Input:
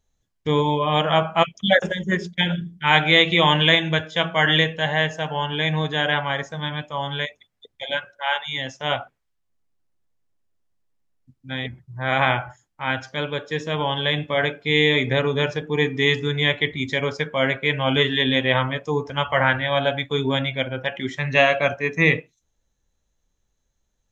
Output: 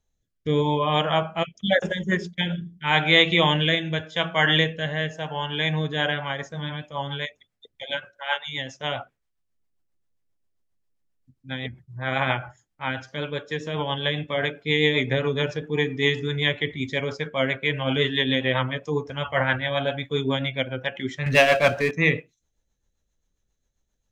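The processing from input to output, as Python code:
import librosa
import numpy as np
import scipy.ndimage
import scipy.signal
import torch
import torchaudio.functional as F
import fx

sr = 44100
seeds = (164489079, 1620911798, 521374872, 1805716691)

y = fx.power_curve(x, sr, exponent=0.7, at=(21.26, 21.91))
y = fx.rotary_switch(y, sr, hz=0.85, then_hz=7.5, switch_at_s=5.62)
y = y * 10.0 ** (-1.0 / 20.0)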